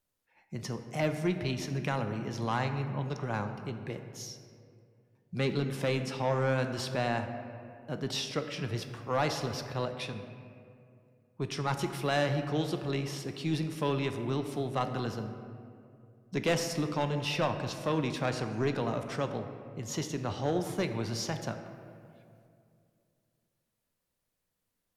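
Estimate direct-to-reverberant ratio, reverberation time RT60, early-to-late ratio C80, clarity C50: 6.5 dB, 2.4 s, 9.0 dB, 8.0 dB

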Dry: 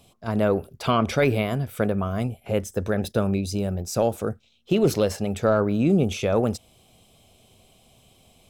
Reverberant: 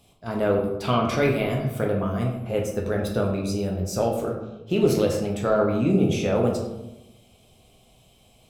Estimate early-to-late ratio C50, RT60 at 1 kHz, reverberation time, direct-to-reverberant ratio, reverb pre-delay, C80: 5.0 dB, 0.90 s, 1.0 s, −1.0 dB, 8 ms, 8.0 dB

